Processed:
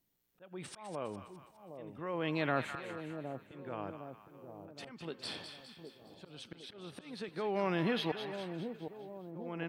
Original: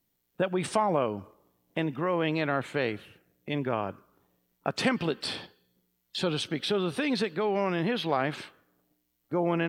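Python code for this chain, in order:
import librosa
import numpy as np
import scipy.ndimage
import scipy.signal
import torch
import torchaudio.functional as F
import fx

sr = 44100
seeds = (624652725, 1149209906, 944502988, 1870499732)

y = fx.auto_swell(x, sr, attack_ms=738.0)
y = fx.echo_split(y, sr, split_hz=840.0, low_ms=762, high_ms=205, feedback_pct=52, wet_db=-8)
y = F.gain(torch.from_numpy(y), -4.0).numpy()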